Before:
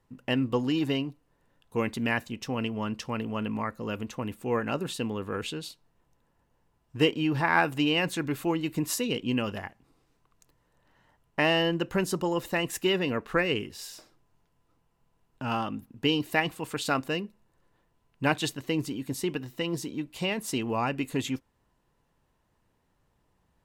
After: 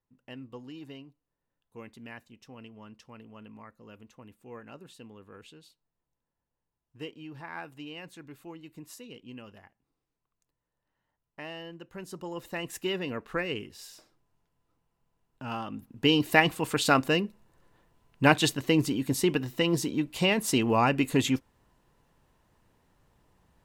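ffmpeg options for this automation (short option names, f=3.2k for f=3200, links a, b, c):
-af "volume=5dB,afade=t=in:st=11.9:d=0.87:silence=0.266073,afade=t=in:st=15.66:d=0.66:silence=0.298538"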